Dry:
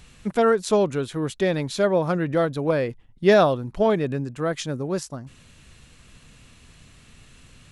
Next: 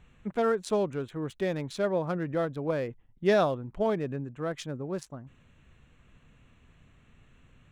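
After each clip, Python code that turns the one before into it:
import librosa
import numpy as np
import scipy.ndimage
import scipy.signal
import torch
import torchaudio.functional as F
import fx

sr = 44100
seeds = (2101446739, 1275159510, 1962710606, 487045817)

y = fx.wiener(x, sr, points=9)
y = y * 10.0 ** (-7.5 / 20.0)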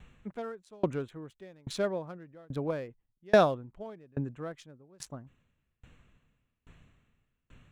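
y = fx.tremolo_decay(x, sr, direction='decaying', hz=1.2, depth_db=33)
y = y * 10.0 ** (5.0 / 20.0)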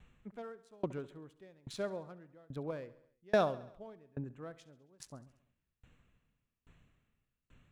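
y = fx.echo_feedback(x, sr, ms=68, feedback_pct=58, wet_db=-18)
y = y * 10.0 ** (-7.5 / 20.0)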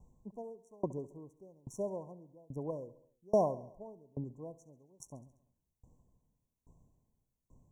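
y = fx.brickwall_bandstop(x, sr, low_hz=1100.0, high_hz=5500.0)
y = y * 10.0 ** (1.0 / 20.0)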